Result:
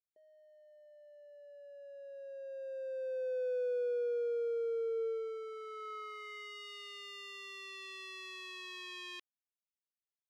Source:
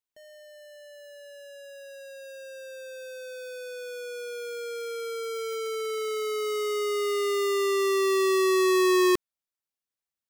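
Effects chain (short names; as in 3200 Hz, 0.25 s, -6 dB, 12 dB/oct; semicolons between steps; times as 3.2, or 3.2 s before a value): Doppler pass-by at 3.49, 7 m/s, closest 4.9 m; band-pass sweep 420 Hz -> 3000 Hz, 4.95–6.68; gain +7 dB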